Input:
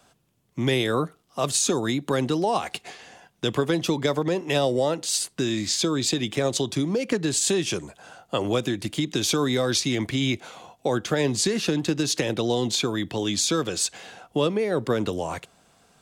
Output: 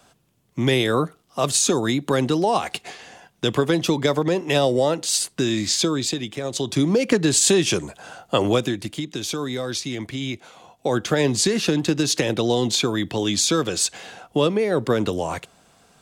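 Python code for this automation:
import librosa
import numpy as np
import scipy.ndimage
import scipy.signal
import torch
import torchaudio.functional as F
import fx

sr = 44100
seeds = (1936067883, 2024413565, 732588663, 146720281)

y = fx.gain(x, sr, db=fx.line((5.81, 3.5), (6.42, -5.0), (6.83, 6.0), (8.45, 6.0), (9.08, -4.0), (10.54, -4.0), (10.98, 3.5)))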